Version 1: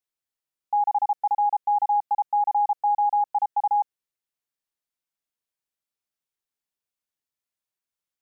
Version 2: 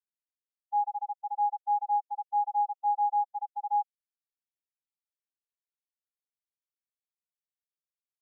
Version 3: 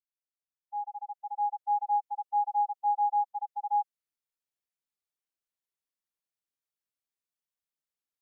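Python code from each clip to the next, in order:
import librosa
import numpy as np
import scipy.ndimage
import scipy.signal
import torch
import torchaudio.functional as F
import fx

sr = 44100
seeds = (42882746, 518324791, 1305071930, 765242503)

y1 = fx.spectral_expand(x, sr, expansion=2.5)
y1 = y1 * librosa.db_to_amplitude(-3.5)
y2 = fx.fade_in_head(y1, sr, length_s=1.83)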